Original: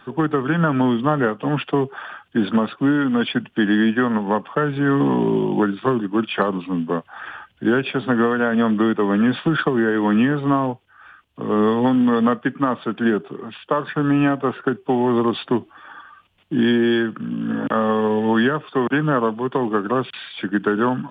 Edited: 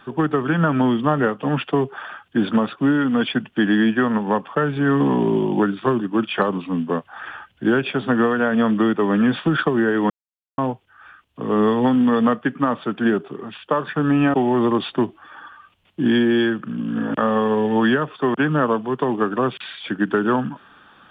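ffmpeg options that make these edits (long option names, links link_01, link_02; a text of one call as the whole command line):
ffmpeg -i in.wav -filter_complex "[0:a]asplit=4[link_01][link_02][link_03][link_04];[link_01]atrim=end=10.1,asetpts=PTS-STARTPTS,afade=type=out:start_time=10.096:duration=0.004:curve=hsin[link_05];[link_02]atrim=start=10.1:end=10.58,asetpts=PTS-STARTPTS,volume=0[link_06];[link_03]atrim=start=10.58:end=14.342,asetpts=PTS-STARTPTS,afade=type=in:duration=0.004:curve=hsin[link_07];[link_04]atrim=start=14.868[link_08];[link_05][link_06][link_07]concat=n=3:v=0:a=1[link_09];[link_09][link_08]acrossfade=duration=0.004:curve1=hsin:curve2=hsin" out.wav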